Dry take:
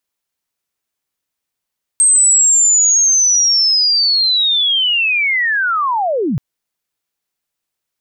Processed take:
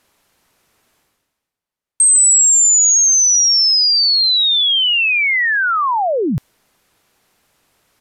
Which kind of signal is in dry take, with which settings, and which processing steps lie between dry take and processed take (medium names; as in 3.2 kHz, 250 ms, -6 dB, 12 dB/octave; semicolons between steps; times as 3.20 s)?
sweep linear 8.4 kHz -> 110 Hz -7 dBFS -> -14 dBFS 4.38 s
resampled via 32 kHz; reverse; upward compressor, threshold -34 dBFS; reverse; tape noise reduction on one side only decoder only